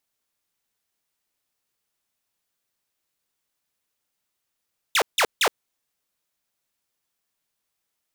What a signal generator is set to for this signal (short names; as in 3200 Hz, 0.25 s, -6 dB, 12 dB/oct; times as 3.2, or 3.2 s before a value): burst of laser zaps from 4000 Hz, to 360 Hz, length 0.07 s saw, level -14 dB, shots 3, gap 0.16 s